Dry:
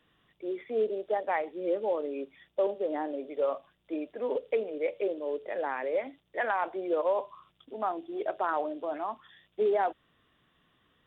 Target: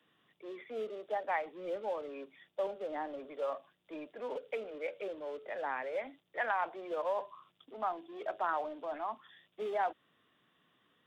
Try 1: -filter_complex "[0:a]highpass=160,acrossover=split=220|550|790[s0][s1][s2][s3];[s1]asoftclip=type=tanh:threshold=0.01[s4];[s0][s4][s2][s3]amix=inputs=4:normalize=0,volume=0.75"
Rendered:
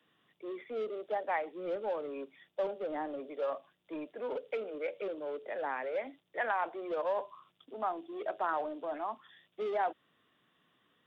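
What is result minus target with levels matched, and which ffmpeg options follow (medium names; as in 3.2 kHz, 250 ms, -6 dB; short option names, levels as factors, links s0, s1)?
saturation: distortion -4 dB
-filter_complex "[0:a]highpass=160,acrossover=split=220|550|790[s0][s1][s2][s3];[s1]asoftclip=type=tanh:threshold=0.00251[s4];[s0][s4][s2][s3]amix=inputs=4:normalize=0,volume=0.75"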